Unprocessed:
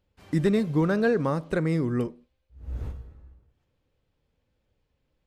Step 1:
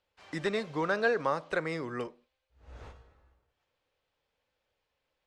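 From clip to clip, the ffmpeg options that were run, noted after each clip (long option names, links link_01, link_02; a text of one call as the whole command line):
ffmpeg -i in.wav -filter_complex "[0:a]acrossover=split=510 7700:gain=0.126 1 0.0794[link_01][link_02][link_03];[link_01][link_02][link_03]amix=inputs=3:normalize=0,volume=1.5dB" out.wav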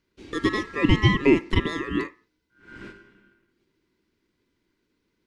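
ffmpeg -i in.wav -af "aeval=exprs='val(0)*sin(2*PI*1500*n/s)':channel_layout=same,lowshelf=frequency=490:width_type=q:width=3:gain=12.5,volume=6dB" out.wav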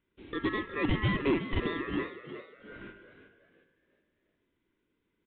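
ffmpeg -i in.wav -filter_complex "[0:a]aresample=8000,asoftclip=type=tanh:threshold=-17.5dB,aresample=44100,asplit=5[link_01][link_02][link_03][link_04][link_05];[link_02]adelay=362,afreqshift=68,volume=-11.5dB[link_06];[link_03]adelay=724,afreqshift=136,volume=-20.1dB[link_07];[link_04]adelay=1086,afreqshift=204,volume=-28.8dB[link_08];[link_05]adelay=1448,afreqshift=272,volume=-37.4dB[link_09];[link_01][link_06][link_07][link_08][link_09]amix=inputs=5:normalize=0,volume=-5dB" out.wav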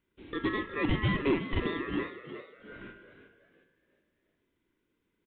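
ffmpeg -i in.wav -filter_complex "[0:a]asplit=2[link_01][link_02];[link_02]adelay=37,volume=-13.5dB[link_03];[link_01][link_03]amix=inputs=2:normalize=0" out.wav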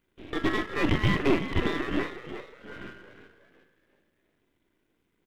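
ffmpeg -i in.wav -af "aeval=exprs='if(lt(val(0),0),0.251*val(0),val(0))':channel_layout=same,volume=7.5dB" out.wav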